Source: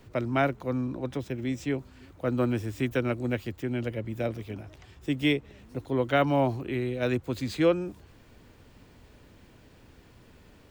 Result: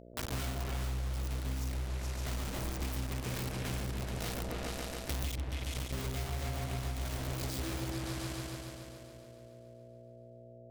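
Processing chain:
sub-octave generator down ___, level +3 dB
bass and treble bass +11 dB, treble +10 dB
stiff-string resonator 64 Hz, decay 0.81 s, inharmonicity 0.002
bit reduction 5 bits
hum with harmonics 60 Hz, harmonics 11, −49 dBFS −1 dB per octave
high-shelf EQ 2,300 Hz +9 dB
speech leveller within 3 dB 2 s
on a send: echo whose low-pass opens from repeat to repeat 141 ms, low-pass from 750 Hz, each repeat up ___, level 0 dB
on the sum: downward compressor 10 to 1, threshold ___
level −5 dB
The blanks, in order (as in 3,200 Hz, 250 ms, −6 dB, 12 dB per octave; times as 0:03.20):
2 octaves, 2 octaves, −28 dBFS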